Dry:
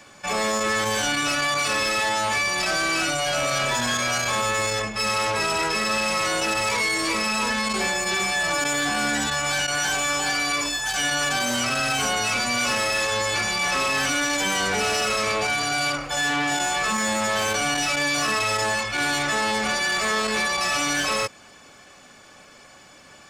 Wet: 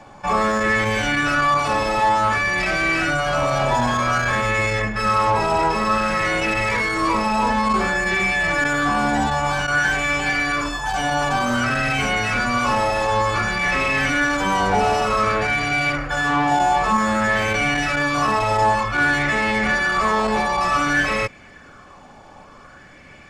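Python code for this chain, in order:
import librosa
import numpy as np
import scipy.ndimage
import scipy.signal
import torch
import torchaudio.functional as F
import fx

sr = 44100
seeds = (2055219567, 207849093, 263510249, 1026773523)

y = fx.tilt_eq(x, sr, slope=-3.0)
y = fx.bell_lfo(y, sr, hz=0.54, low_hz=820.0, high_hz=2200.0, db=12)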